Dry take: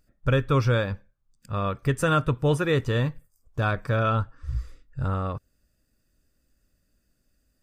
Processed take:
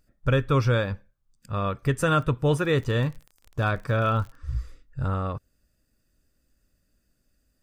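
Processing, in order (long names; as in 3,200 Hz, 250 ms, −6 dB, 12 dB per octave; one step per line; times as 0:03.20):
0:02.17–0:04.34: surface crackle 15 per second → 42 per second −35 dBFS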